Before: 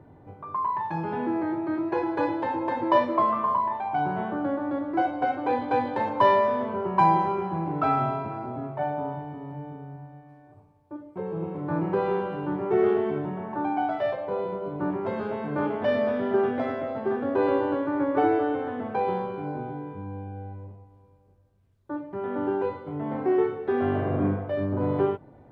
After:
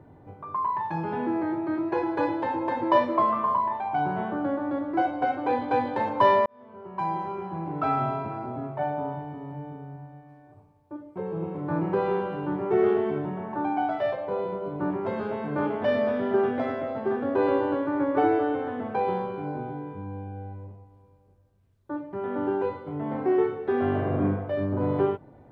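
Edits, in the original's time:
6.46–8.24 s: fade in

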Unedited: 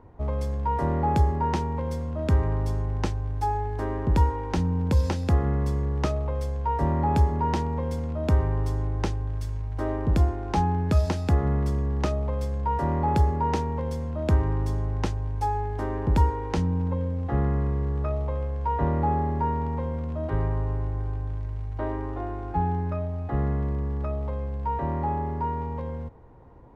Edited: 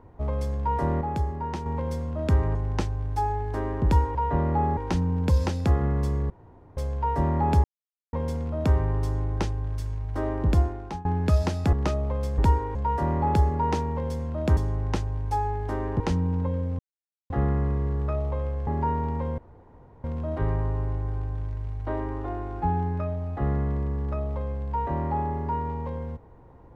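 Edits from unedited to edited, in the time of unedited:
1.01–1.66 s: gain -6 dB
2.55–2.80 s: delete
5.93–6.40 s: room tone
7.27–7.76 s: mute
10.24–10.68 s: fade out linear, to -22 dB
11.36–11.91 s: delete
14.38–14.67 s: delete
16.10–16.47 s: move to 12.56 s
17.26 s: insert silence 0.51 s
18.63–19.25 s: move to 4.40 s
19.96 s: insert room tone 0.66 s

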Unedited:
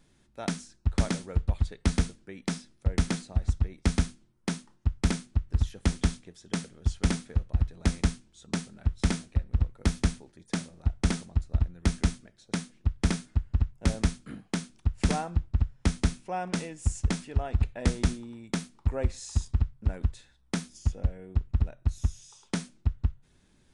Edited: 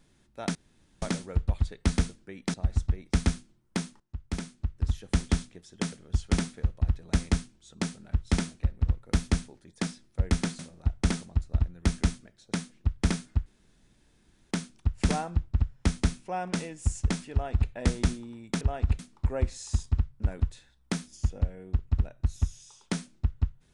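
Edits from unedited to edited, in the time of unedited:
0.55–1.02 s: room tone
2.54–3.26 s: move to 10.59 s
4.72–5.84 s: fade in, from -15.5 dB
13.46–14.51 s: room tone
17.32–17.70 s: copy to 18.61 s

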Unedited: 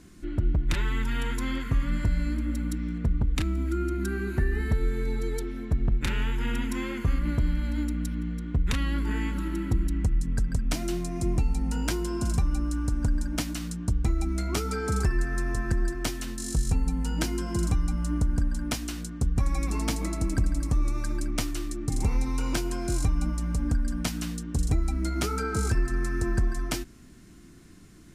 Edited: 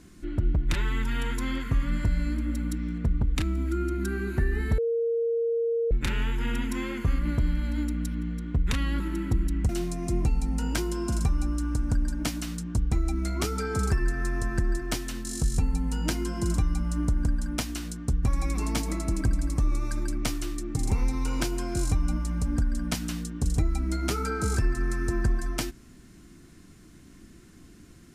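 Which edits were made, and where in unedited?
4.78–5.91 s: bleep 463 Hz -23 dBFS
9.00–9.40 s: delete
10.09–10.82 s: delete

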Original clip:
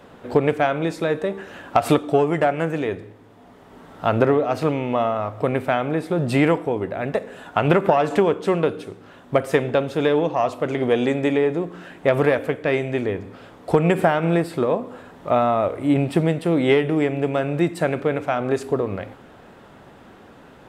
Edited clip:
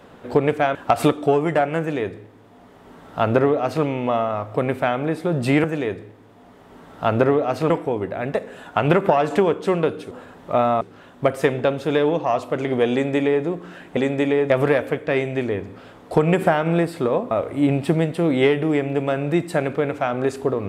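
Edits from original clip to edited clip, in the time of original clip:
0.75–1.61 s: delete
2.65–4.71 s: copy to 6.50 s
11.02–11.55 s: copy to 12.07 s
14.88–15.58 s: move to 8.91 s

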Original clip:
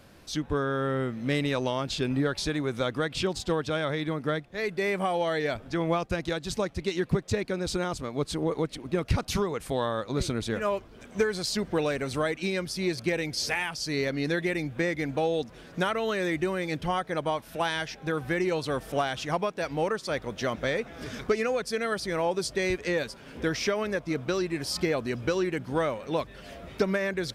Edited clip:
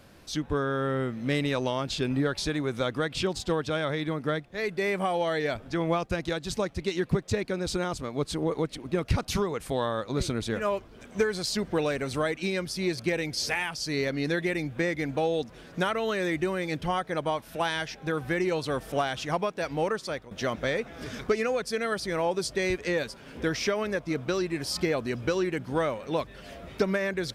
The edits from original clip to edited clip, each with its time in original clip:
20.03–20.31 s: fade out, to -18 dB

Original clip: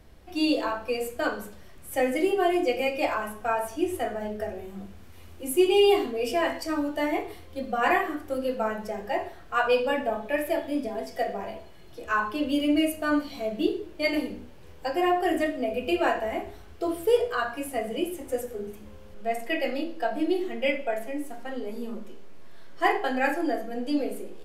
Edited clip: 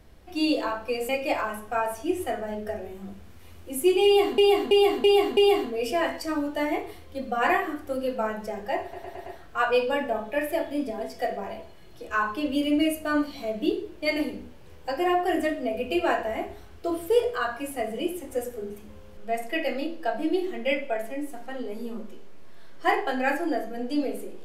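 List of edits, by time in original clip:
1.09–2.82 s: delete
5.78–6.11 s: loop, 5 plays
9.23 s: stutter 0.11 s, 5 plays

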